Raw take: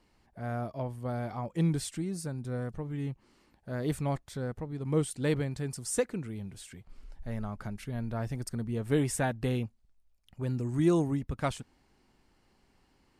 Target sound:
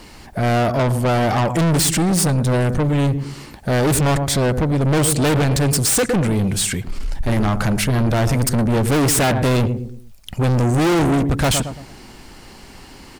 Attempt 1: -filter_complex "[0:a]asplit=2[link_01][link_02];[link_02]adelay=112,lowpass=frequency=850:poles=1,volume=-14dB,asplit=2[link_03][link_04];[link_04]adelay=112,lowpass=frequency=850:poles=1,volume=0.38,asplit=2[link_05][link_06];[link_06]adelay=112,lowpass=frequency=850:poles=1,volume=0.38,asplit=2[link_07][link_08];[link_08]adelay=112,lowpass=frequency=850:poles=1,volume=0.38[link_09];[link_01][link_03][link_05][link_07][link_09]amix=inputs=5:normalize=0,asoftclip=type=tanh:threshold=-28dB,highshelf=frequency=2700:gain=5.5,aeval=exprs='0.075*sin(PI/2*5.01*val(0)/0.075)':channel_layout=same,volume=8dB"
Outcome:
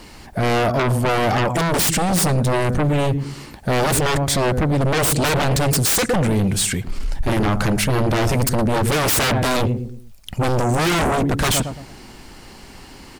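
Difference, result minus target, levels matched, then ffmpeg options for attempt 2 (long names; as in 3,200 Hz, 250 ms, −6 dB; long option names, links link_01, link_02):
soft clipping: distortion −6 dB
-filter_complex "[0:a]asplit=2[link_01][link_02];[link_02]adelay=112,lowpass=frequency=850:poles=1,volume=-14dB,asplit=2[link_03][link_04];[link_04]adelay=112,lowpass=frequency=850:poles=1,volume=0.38,asplit=2[link_05][link_06];[link_06]adelay=112,lowpass=frequency=850:poles=1,volume=0.38,asplit=2[link_07][link_08];[link_08]adelay=112,lowpass=frequency=850:poles=1,volume=0.38[link_09];[link_01][link_03][link_05][link_07][link_09]amix=inputs=5:normalize=0,asoftclip=type=tanh:threshold=-37.5dB,highshelf=frequency=2700:gain=5.5,aeval=exprs='0.075*sin(PI/2*5.01*val(0)/0.075)':channel_layout=same,volume=8dB"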